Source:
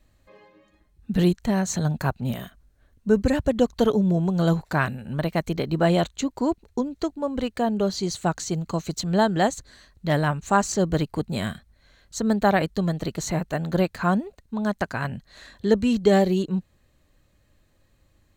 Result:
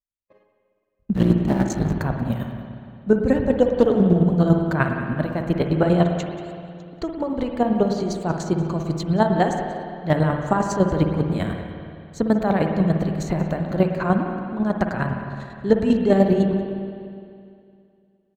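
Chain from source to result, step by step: 1.13–1.93 s: cycle switcher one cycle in 3, muted; 6.16–6.93 s: steep high-pass 1.7 kHz; gate -49 dBFS, range -46 dB; treble shelf 2.5 kHz -11.5 dB; in parallel at +1 dB: peak limiter -14 dBFS, peak gain reduction 7 dB; on the sum: square tremolo 10 Hz, depth 60%, duty 30%; on a send: delay 184 ms -18.5 dB; on the sum: spring tank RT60 2.4 s, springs 51/57 ms, chirp 70 ms, DRR 3.5 dB; 3.67–4.24 s: loudspeaker Doppler distortion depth 0.25 ms

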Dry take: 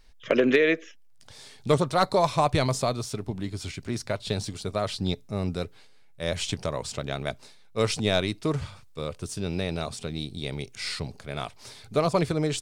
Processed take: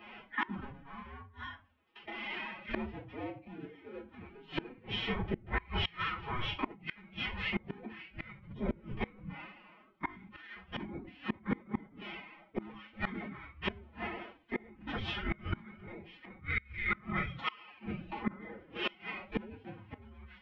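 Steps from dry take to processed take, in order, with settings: tracing distortion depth 0.048 ms; in parallel at -9 dB: integer overflow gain 17 dB; on the sum: compression 1.5:1, threshold -34 dBFS, peak gain reduction 7 dB; square tremolo 0.62 Hz, depth 60%, duty 25%; wide varispeed 0.618×; simulated room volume 190 m³, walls furnished, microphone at 3.8 m; mistuned SSB -150 Hz 250–3200 Hz; formant-preserving pitch shift +9 st; hum notches 60/120/180 Hz; inverted gate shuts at -28 dBFS, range -27 dB; trim +7.5 dB

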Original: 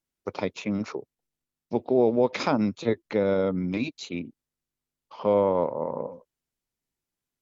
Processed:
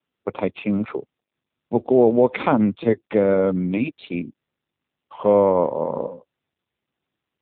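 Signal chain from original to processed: 3.22–3.66 s: bass shelf 86 Hz -4.5 dB; trim +6.5 dB; AMR-NB 7.4 kbps 8 kHz

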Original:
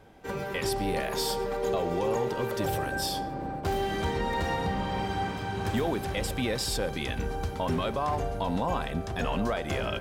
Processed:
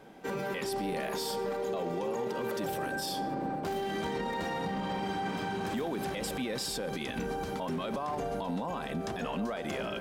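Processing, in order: resonant low shelf 130 Hz -11.5 dB, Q 1.5; peak limiter -28 dBFS, peak gain reduction 11 dB; trim +2 dB

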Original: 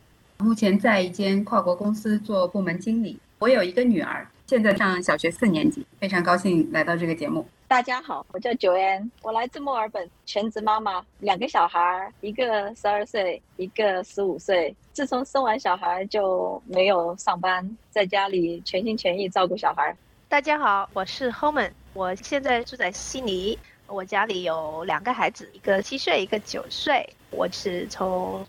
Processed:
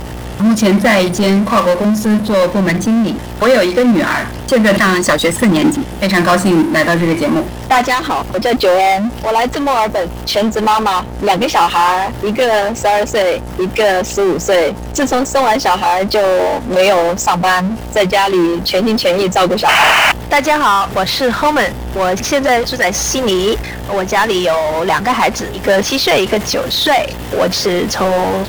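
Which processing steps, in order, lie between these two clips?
painted sound noise, 19.68–20.12 s, 590–3100 Hz -19 dBFS; mains buzz 60 Hz, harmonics 15, -50 dBFS -3 dB/octave; power-law waveshaper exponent 0.5; trim +3.5 dB

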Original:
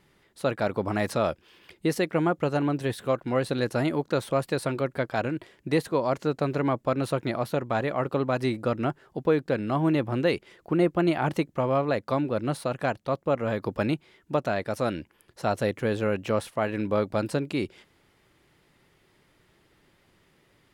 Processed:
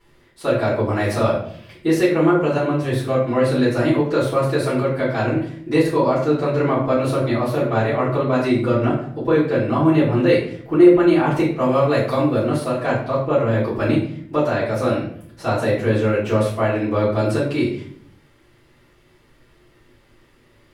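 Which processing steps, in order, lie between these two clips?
11.59–12.42 s: treble shelf 4 kHz -> 6.7 kHz +12 dB; simulated room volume 82 m³, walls mixed, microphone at 3.1 m; trim -6 dB

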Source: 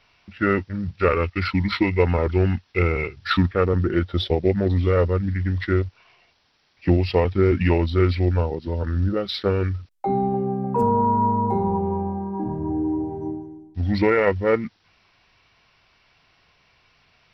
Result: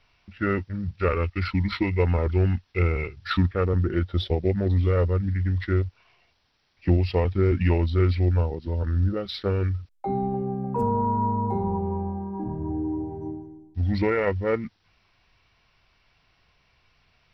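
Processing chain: bass shelf 86 Hz +11 dB; trim -5.5 dB

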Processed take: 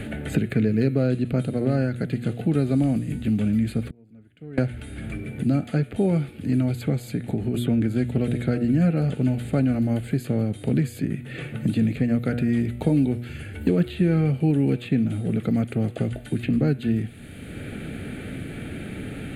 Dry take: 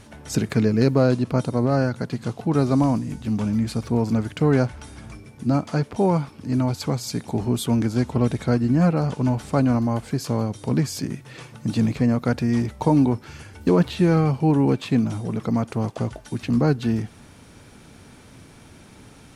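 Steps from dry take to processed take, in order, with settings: de-hum 120.3 Hz, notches 34; 3.88–4.58 s: inverted gate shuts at -26 dBFS, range -37 dB; 7.10–7.54 s: compression, threshold -25 dBFS, peak gain reduction 7.5 dB; static phaser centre 2.4 kHz, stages 4; three bands compressed up and down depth 70%

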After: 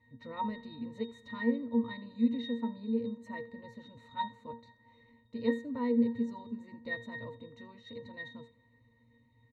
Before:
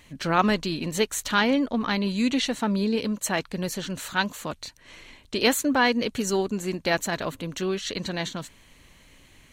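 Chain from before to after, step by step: pitch-class resonator A#, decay 0.28 s; delay 82 ms -20.5 dB; on a send at -24 dB: reverberation RT60 2.9 s, pre-delay 131 ms; on the sum: trim +3.5 dB

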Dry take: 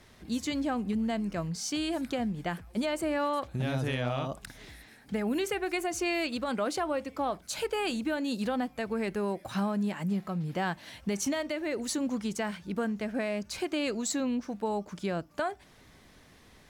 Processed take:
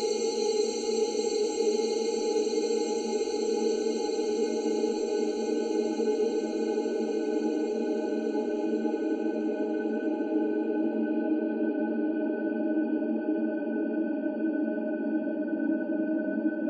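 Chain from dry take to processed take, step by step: spectral contrast enhancement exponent 2.9; transient shaper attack +11 dB, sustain -4 dB; Paulstretch 40×, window 1.00 s, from 7.72 s; on a send: reverberation RT60 1.1 s, pre-delay 91 ms, DRR 14 dB

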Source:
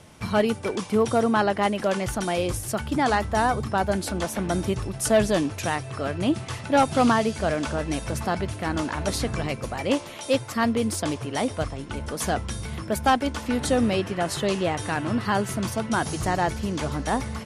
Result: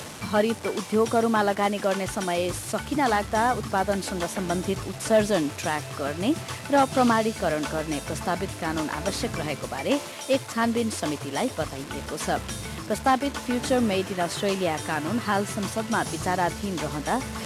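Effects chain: one-bit delta coder 64 kbps, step -33.5 dBFS; high-pass 150 Hz 6 dB/octave; reverse; upward compressor, threshold -29 dBFS; reverse

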